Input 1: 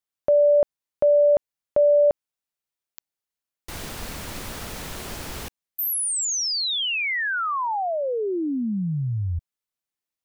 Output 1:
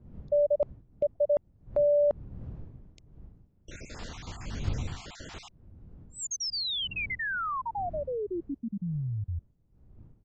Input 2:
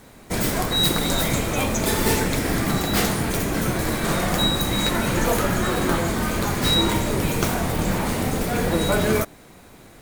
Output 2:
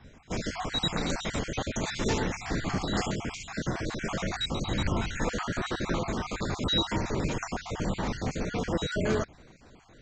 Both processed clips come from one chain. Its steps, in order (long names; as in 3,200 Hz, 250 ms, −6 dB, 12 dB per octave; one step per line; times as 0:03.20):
time-frequency cells dropped at random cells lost 43%
wind on the microphone 110 Hz −37 dBFS
downsampling to 16,000 Hz
level −6.5 dB